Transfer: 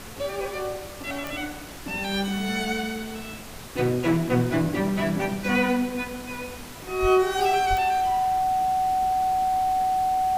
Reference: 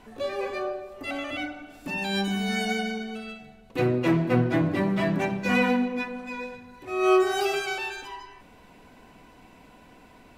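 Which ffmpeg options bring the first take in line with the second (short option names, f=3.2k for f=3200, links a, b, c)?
-filter_complex "[0:a]adeclick=t=4,bandreject=f=750:w=30,asplit=3[a][b][c];[a]afade=t=out:st=7.01:d=0.02[d];[b]highpass=f=140:w=0.5412,highpass=f=140:w=1.3066,afade=t=in:st=7.01:d=0.02,afade=t=out:st=7.13:d=0.02[e];[c]afade=t=in:st=7.13:d=0.02[f];[d][e][f]amix=inputs=3:normalize=0,asplit=3[g][h][i];[g]afade=t=out:st=7.69:d=0.02[j];[h]highpass=f=140:w=0.5412,highpass=f=140:w=1.3066,afade=t=in:st=7.69:d=0.02,afade=t=out:st=7.81:d=0.02[k];[i]afade=t=in:st=7.81:d=0.02[l];[j][k][l]amix=inputs=3:normalize=0,afftdn=nr=14:nf=-39"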